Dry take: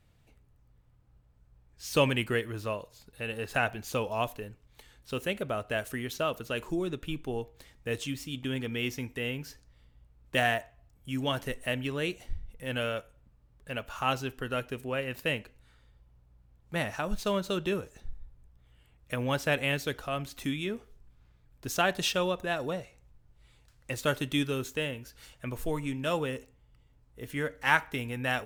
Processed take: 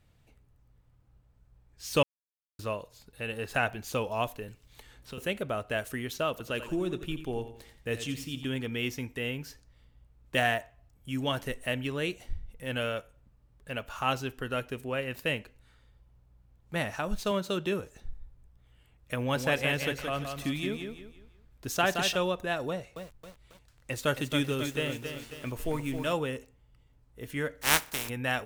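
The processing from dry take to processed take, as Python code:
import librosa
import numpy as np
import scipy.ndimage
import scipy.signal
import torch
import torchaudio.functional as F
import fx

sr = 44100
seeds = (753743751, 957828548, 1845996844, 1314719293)

y = fx.band_squash(x, sr, depth_pct=70, at=(4.48, 5.18))
y = fx.echo_feedback(y, sr, ms=87, feedback_pct=39, wet_db=-11, at=(6.3, 8.49))
y = fx.highpass(y, sr, hz=97.0, slope=12, at=(17.31, 17.8))
y = fx.echo_feedback(y, sr, ms=172, feedback_pct=33, wet_db=-6.0, at=(19.18, 22.16))
y = fx.echo_crushed(y, sr, ms=271, feedback_pct=55, bits=8, wet_db=-7, at=(22.69, 26.13))
y = fx.spec_flatten(y, sr, power=0.29, at=(27.61, 28.08), fade=0.02)
y = fx.edit(y, sr, fx.silence(start_s=2.03, length_s=0.56), tone=tone)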